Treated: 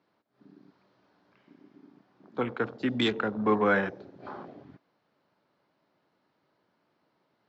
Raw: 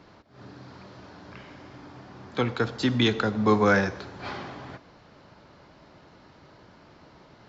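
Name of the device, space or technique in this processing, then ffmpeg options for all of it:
over-cleaned archive recording: -af "highpass=180,lowpass=5300,afwtdn=0.02,volume=-3dB"

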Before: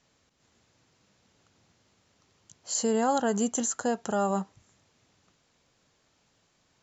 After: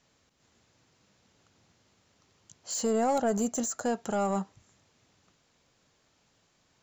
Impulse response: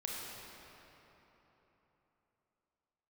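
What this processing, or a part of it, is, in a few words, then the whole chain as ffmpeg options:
saturation between pre-emphasis and de-emphasis: -filter_complex "[0:a]asettb=1/sr,asplit=3[link_01][link_02][link_03];[link_01]atrim=end=2.864[link_04];[link_02]atrim=start=2.86:end=3.85,asetpts=PTS-STARTPTS,afade=type=in:duration=0.004:curve=qsin,afade=type=out:start_time=0.986:duration=0.004:curve=qsin,equalizer=frequency=630:width_type=o:width=0.33:gain=7,equalizer=frequency=1000:width_type=o:width=0.33:gain=-4,equalizer=frequency=1600:width_type=o:width=0.33:gain=-3,equalizer=frequency=3150:width_type=o:width=0.33:gain=-7[link_05];[link_03]atrim=start=3.846[link_06];[link_04][link_05]acrossfade=duration=0.004:curve1=hsin:curve2=qsin[link_07];[link_07][link_06]acrossfade=duration=0.004:curve1=qsin:curve2=hsin,highshelf=frequency=2600:gain=11,asoftclip=type=tanh:threshold=-18.5dB,highshelf=frequency=2600:gain=-11"

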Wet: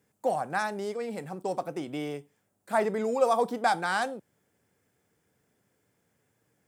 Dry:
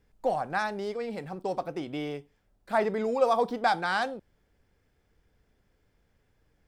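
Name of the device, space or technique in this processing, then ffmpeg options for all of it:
budget condenser microphone: -af "highpass=frequency=110:width=0.5412,highpass=frequency=110:width=1.3066,highshelf=frequency=6000:width_type=q:width=1.5:gain=7.5"

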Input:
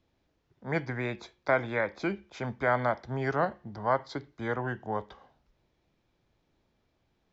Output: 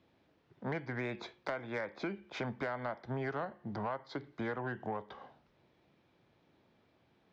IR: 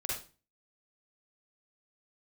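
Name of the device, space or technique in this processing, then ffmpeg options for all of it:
AM radio: -af "highpass=120,lowpass=3900,acompressor=threshold=-39dB:ratio=10,asoftclip=type=tanh:threshold=-32.5dB,volume=5.5dB"

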